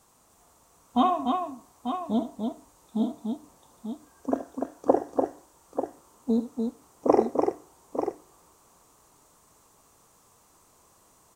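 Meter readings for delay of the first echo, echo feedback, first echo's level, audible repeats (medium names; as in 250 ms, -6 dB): 74 ms, no regular repeats, -13.0 dB, 3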